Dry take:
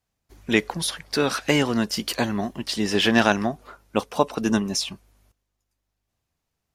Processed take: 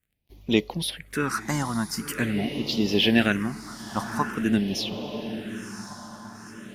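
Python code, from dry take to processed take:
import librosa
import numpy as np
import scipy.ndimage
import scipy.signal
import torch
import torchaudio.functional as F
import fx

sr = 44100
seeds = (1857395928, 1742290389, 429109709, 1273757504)

y = fx.dmg_crackle(x, sr, seeds[0], per_s=31.0, level_db=-49.0)
y = fx.echo_diffused(y, sr, ms=983, feedback_pct=55, wet_db=-10)
y = fx.phaser_stages(y, sr, stages=4, low_hz=430.0, high_hz=1600.0, hz=0.45, feedback_pct=20)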